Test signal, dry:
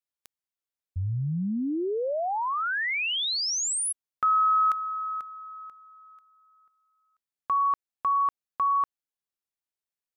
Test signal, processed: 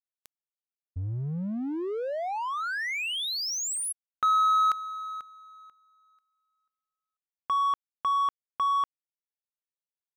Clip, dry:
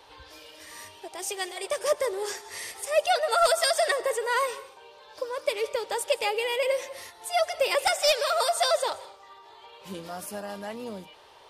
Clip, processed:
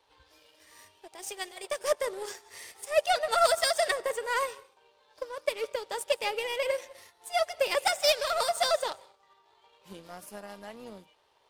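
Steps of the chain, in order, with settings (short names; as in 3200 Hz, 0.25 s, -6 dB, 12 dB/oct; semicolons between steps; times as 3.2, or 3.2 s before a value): power-law curve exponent 1.4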